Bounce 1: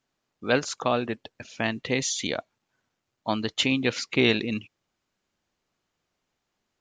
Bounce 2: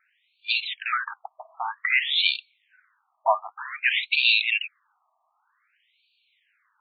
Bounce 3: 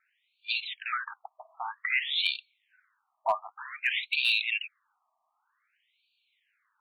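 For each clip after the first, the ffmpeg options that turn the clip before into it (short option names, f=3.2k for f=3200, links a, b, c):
-filter_complex "[0:a]asplit=2[a][b];[b]highpass=f=720:p=1,volume=25dB,asoftclip=type=tanh:threshold=-7dB[c];[a][c]amix=inputs=2:normalize=0,lowpass=f=7.4k:p=1,volume=-6dB,afftfilt=real='re*between(b*sr/1024,860*pow(3300/860,0.5+0.5*sin(2*PI*0.53*pts/sr))/1.41,860*pow(3300/860,0.5+0.5*sin(2*PI*0.53*pts/sr))*1.41)':imag='im*between(b*sr/1024,860*pow(3300/860,0.5+0.5*sin(2*PI*0.53*pts/sr))/1.41,860*pow(3300/860,0.5+0.5*sin(2*PI*0.53*pts/sr))*1.41)':win_size=1024:overlap=0.75"
-af "asoftclip=type=hard:threshold=-10.5dB,volume=-6dB"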